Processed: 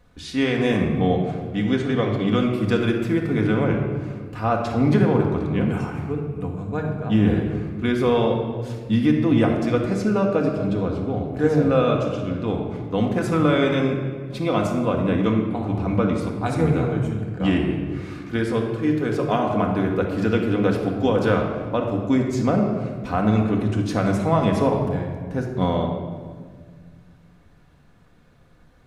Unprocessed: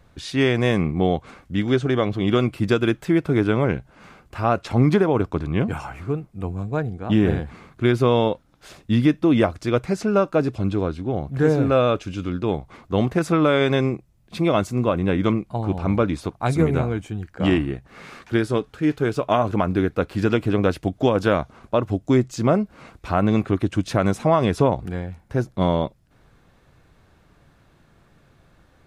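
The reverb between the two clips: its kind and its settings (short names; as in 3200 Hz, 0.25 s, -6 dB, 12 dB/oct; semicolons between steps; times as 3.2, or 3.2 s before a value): shoebox room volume 2100 m³, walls mixed, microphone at 1.9 m; gain -4 dB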